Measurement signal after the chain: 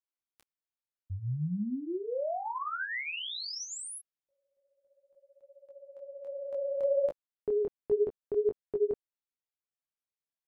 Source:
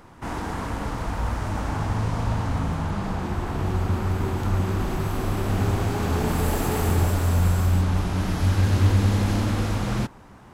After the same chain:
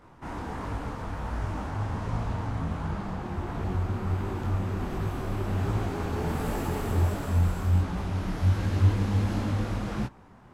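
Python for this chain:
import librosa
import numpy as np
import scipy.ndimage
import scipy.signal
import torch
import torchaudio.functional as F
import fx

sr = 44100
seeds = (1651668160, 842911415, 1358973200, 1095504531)

y = fx.high_shelf(x, sr, hz=3800.0, db=-7.0)
y = fx.detune_double(y, sr, cents=48)
y = y * librosa.db_to_amplitude(-1.5)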